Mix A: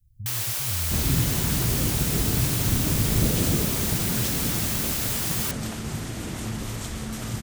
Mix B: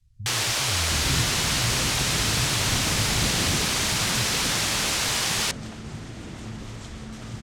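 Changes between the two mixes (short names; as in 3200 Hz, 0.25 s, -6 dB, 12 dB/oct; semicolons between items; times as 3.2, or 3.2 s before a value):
first sound +10.0 dB; second sound -5.0 dB; master: add LPF 6100 Hz 12 dB/oct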